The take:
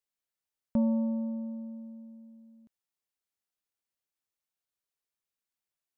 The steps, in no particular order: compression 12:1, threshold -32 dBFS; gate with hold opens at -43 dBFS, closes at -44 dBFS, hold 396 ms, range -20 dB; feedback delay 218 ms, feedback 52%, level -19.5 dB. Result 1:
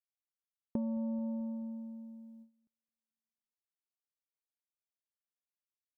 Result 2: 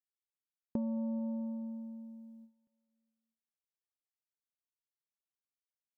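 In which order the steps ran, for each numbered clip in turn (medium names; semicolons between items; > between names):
feedback delay > gate with hold > compression; gate with hold > feedback delay > compression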